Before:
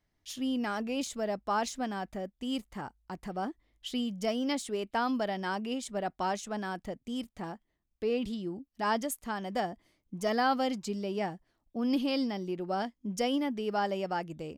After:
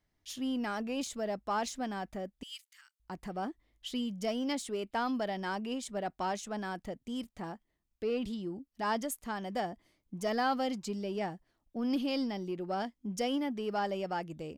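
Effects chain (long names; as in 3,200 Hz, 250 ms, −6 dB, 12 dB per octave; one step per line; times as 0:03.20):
0:02.43–0:03.00: Bessel high-pass filter 2,800 Hz, order 8
in parallel at −8 dB: soft clipping −33.5 dBFS, distortion −9 dB
on the sum: level −4 dB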